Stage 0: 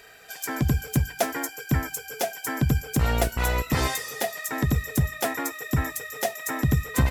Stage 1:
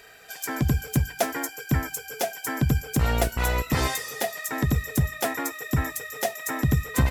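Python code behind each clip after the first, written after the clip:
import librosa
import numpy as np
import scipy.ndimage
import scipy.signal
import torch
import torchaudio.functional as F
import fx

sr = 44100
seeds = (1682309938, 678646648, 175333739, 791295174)

y = x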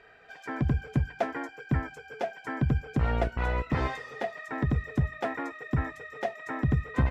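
y = scipy.signal.sosfilt(scipy.signal.butter(2, 2100.0, 'lowpass', fs=sr, output='sos'), x)
y = y * 10.0 ** (-3.5 / 20.0)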